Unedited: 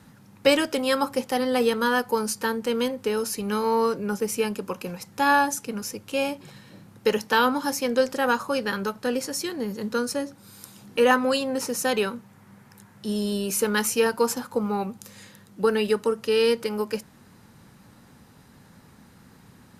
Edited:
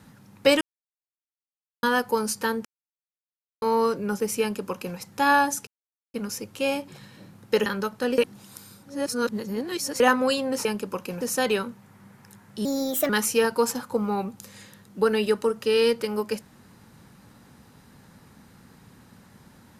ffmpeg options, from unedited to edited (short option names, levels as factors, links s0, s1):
-filter_complex "[0:a]asplit=13[s0][s1][s2][s3][s4][s5][s6][s7][s8][s9][s10][s11][s12];[s0]atrim=end=0.61,asetpts=PTS-STARTPTS,afade=t=out:st=0.606:d=0.004:c=hsin[s13];[s1]atrim=start=0.61:end=1.83,asetpts=PTS-STARTPTS,volume=0[s14];[s2]atrim=start=1.83:end=2.65,asetpts=PTS-STARTPTS,afade=t=in:d=0.004:c=hsin,afade=t=out:st=0.816:d=0.004:c=hsin[s15];[s3]atrim=start=2.65:end=3.62,asetpts=PTS-STARTPTS,volume=0[s16];[s4]atrim=start=3.62:end=5.67,asetpts=PTS-STARTPTS,afade=t=in:d=0.004:c=hsin,afade=t=out:st=2.046:d=0.004:c=hsin,apad=pad_dur=0.47[s17];[s5]atrim=start=5.67:end=7.192,asetpts=PTS-STARTPTS,afade=t=in:d=0.004:c=hsin[s18];[s6]atrim=start=8.688:end=9.212[s19];[s7]atrim=start=9.208:end=11.032,asetpts=PTS-STARTPTS,areverse[s20];[s8]atrim=start=11.028:end=11.682[s21];[s9]atrim=start=4.408:end=4.972[s22];[s10]atrim=start=11.678:end=13.124[s23];[s11]atrim=start=13.12:end=13.71,asetpts=PTS-STARTPTS,asetrate=58653,aresample=44100,atrim=end_sample=19563,asetpts=PTS-STARTPTS[s24];[s12]atrim=start=13.706[s25];[s13][s14][s15][s16][s17][s18]concat=n=6:v=0:a=1[s26];[s26][s19]acrossfade=d=0.004:c1=hsin:c2=hsin[s27];[s27][s20]acrossfade=d=0.004:c1=hsin:c2=hsin[s28];[s28][s21]acrossfade=d=0.004:c1=hsin:c2=hsin[s29];[s29][s22]acrossfade=d=0.004:c1=hsin:c2=hsin[s30];[s30][s23]acrossfade=d=0.004:c1=hsin:c2=hsin[s31];[s31][s24]acrossfade=d=0.004:c1=hsin:c2=hsin[s32];[s32][s25]acrossfade=d=0.004:c1=hsin:c2=hsin"